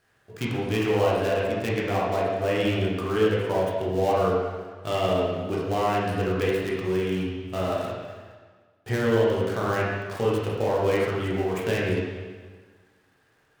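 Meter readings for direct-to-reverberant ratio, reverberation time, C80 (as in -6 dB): -6.0 dB, 1.5 s, 1.5 dB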